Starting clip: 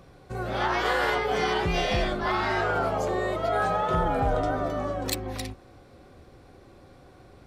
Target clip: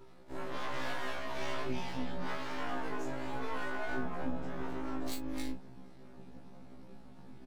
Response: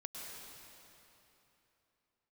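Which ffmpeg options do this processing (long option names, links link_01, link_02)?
-af "equalizer=frequency=200:width_type=o:width=0.2:gain=12.5,aecho=1:1:6.1:0.59,asubboost=boost=4.5:cutoff=97,acompressor=threshold=-27dB:ratio=6,aeval=exprs='val(0)*sin(2*PI*210*n/s)':channel_layout=same,aeval=exprs='max(val(0),0)':channel_layout=same,aecho=1:1:23|44:0.596|0.316,afftfilt=real='re*1.73*eq(mod(b,3),0)':imag='im*1.73*eq(mod(b,3),0)':win_size=2048:overlap=0.75,volume=-1dB"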